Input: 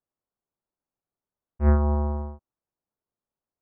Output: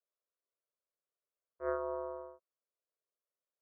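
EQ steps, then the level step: ladder band-pass 790 Hz, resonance 20%; fixed phaser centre 820 Hz, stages 6; +9.5 dB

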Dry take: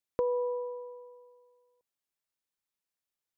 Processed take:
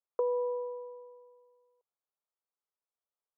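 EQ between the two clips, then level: Chebyshev band-pass 410–1300 Hz, order 3; 0.0 dB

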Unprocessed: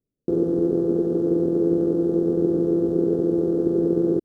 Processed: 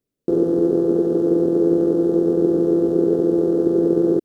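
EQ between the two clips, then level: low shelf 260 Hz -9.5 dB; +7.0 dB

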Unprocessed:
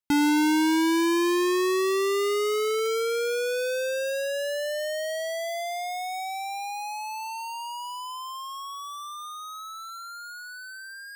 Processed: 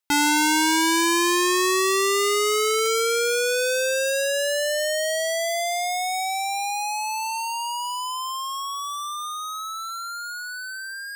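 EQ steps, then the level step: dynamic EQ 7700 Hz, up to +6 dB, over -48 dBFS, Q 1.2; bell 230 Hz -9 dB 1.1 oct; low shelf 310 Hz -9 dB; +7.5 dB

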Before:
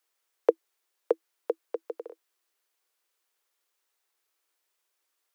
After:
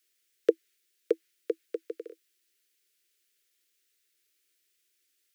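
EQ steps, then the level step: dynamic EQ 1900 Hz, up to +4 dB, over -47 dBFS, Q 0.73; Butterworth band-stop 860 Hz, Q 0.57; +5.0 dB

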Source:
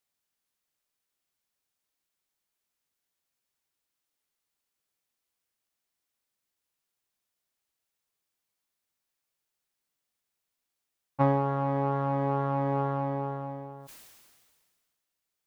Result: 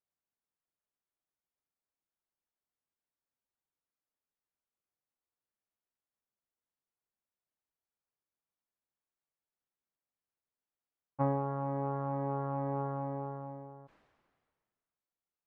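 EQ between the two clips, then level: LPF 1400 Hz 12 dB/oct; -6.5 dB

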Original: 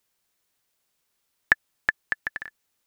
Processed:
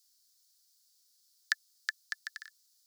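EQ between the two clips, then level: steep high-pass 1300 Hz 48 dB/oct; resonant high shelf 3400 Hz +12 dB, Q 3; -7.5 dB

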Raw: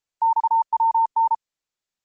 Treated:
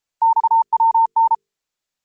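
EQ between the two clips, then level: notches 50/100/150/200/250/300/350/400/450 Hz; +4.5 dB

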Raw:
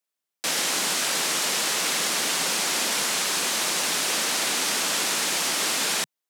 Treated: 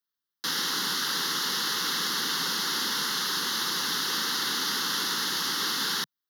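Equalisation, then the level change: fixed phaser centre 2400 Hz, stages 6; 0.0 dB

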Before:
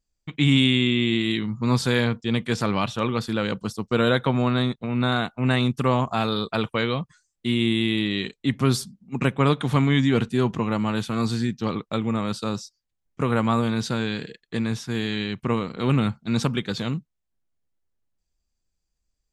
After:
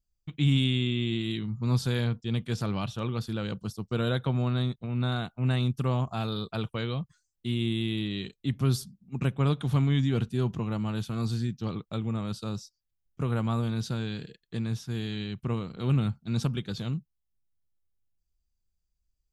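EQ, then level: ten-band EQ 250 Hz -7 dB, 500 Hz -7 dB, 1000 Hz -8 dB, 2000 Hz -11 dB, 4000 Hz -4 dB, 8000 Hz -8 dB; 0.0 dB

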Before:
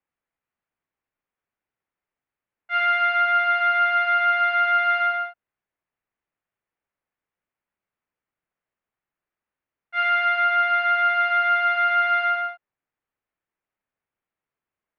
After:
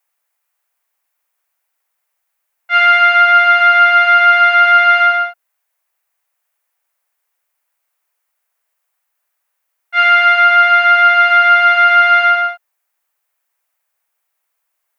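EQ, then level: HPF 430 Hz 24 dB/oct; tilt +6 dB/oct; bell 650 Hz +11.5 dB 2.4 oct; +2.0 dB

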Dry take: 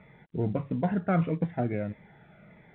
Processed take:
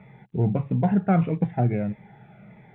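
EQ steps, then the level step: thirty-one-band EQ 125 Hz +12 dB, 200 Hz +8 dB, 400 Hz +5 dB, 800 Hz +9 dB, 2500 Hz +4 dB; 0.0 dB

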